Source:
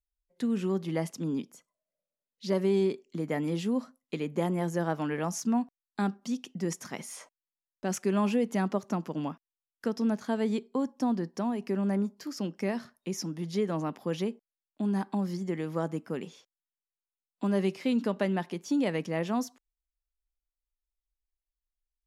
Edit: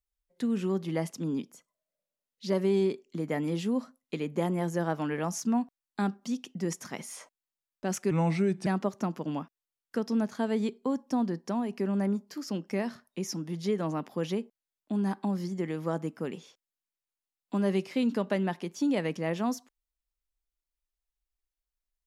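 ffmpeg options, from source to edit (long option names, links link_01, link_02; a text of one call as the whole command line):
ffmpeg -i in.wav -filter_complex "[0:a]asplit=3[link_01][link_02][link_03];[link_01]atrim=end=8.114[link_04];[link_02]atrim=start=8.11:end=8.56,asetpts=PTS-STARTPTS,asetrate=35721,aresample=44100[link_05];[link_03]atrim=start=8.556[link_06];[link_04][link_05]acrossfade=duration=0.004:curve1=hsin:curve2=hsin[link_07];[link_07][link_06]acrossfade=duration=0.004:curve1=hsin:curve2=hsin" out.wav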